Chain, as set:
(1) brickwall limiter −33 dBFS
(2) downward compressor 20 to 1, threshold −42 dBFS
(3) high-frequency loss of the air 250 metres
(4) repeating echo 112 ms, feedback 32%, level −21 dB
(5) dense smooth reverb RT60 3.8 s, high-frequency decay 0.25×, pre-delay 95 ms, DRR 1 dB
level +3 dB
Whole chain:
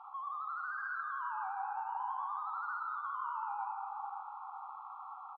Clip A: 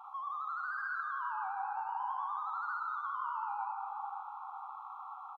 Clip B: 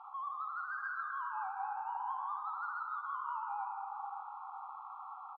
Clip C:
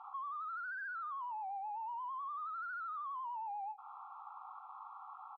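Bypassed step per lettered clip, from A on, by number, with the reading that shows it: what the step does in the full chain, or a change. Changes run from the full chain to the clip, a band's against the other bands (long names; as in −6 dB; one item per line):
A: 3, change in integrated loudness +1.5 LU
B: 1, average gain reduction 4.5 dB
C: 5, change in crest factor −5.0 dB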